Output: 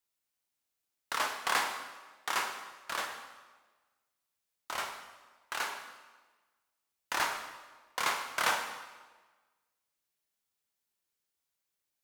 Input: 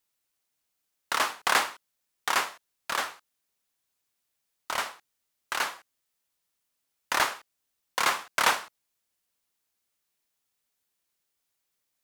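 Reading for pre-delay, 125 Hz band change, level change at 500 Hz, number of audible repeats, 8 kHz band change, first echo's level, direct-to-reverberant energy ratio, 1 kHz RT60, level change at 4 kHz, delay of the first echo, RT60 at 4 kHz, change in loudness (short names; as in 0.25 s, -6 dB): 7 ms, -5.0 dB, -5.5 dB, none, -5.5 dB, none, 3.5 dB, 1.3 s, -5.5 dB, none, 1.1 s, -6.0 dB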